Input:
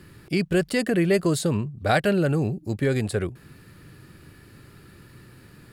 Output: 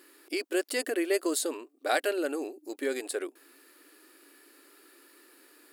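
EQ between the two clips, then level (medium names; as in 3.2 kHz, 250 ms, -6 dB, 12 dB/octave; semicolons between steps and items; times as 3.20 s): brick-wall FIR high-pass 260 Hz; treble shelf 6.8 kHz +11 dB; -6.0 dB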